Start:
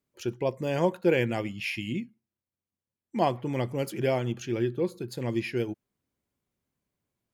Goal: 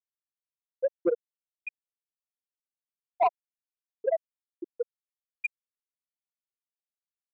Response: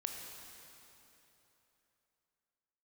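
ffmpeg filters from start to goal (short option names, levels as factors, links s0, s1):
-filter_complex "[0:a]equalizer=f=2000:t=o:w=2.5:g=14,bandreject=f=1100:w=17,dynaudnorm=f=400:g=9:m=1.41,asplit=2[s0][s1];[s1]adelay=427,lowpass=f=2000:p=1,volume=0.316,asplit=2[s2][s3];[s3]adelay=427,lowpass=f=2000:p=1,volume=0.51,asplit=2[s4][s5];[s5]adelay=427,lowpass=f=2000:p=1,volume=0.51,asplit=2[s6][s7];[s7]adelay=427,lowpass=f=2000:p=1,volume=0.51,asplit=2[s8][s9];[s9]adelay=427,lowpass=f=2000:p=1,volume=0.51,asplit=2[s10][s11];[s11]adelay=427,lowpass=f=2000:p=1,volume=0.51[s12];[s0][s2][s4][s6][s8][s10][s12]amix=inputs=7:normalize=0,asplit=2[s13][s14];[1:a]atrim=start_sample=2205,asetrate=79380,aresample=44100[s15];[s14][s15]afir=irnorm=-1:irlink=0,volume=0.106[s16];[s13][s16]amix=inputs=2:normalize=0,adynamicsmooth=sensitivity=6.5:basefreq=3100,asoftclip=type=hard:threshold=0.335,adynamicequalizer=threshold=0.0126:dfrequency=1200:dqfactor=1.9:tfrequency=1200:tqfactor=1.9:attack=5:release=100:ratio=0.375:range=3.5:mode=boostabove:tftype=bell,afftfilt=real='re*gte(hypot(re,im),1.26)':imag='im*gte(hypot(re,im),1.26)':win_size=1024:overlap=0.75,asoftclip=type=tanh:threshold=0.168"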